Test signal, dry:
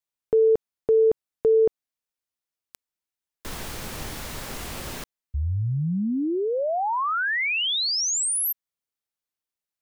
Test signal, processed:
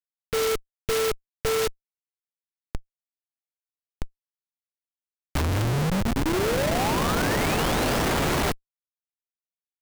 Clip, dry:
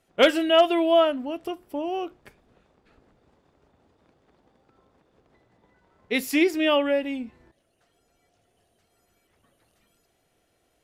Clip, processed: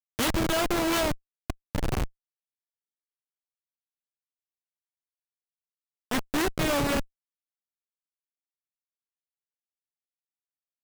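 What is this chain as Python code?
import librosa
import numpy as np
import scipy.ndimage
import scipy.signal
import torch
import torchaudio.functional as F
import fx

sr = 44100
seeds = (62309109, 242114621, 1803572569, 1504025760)

y = fx.envelope_flatten(x, sr, power=0.1)
y = fx.schmitt(y, sr, flips_db=-19.5)
y = F.gain(torch.from_numpy(y), 3.0).numpy()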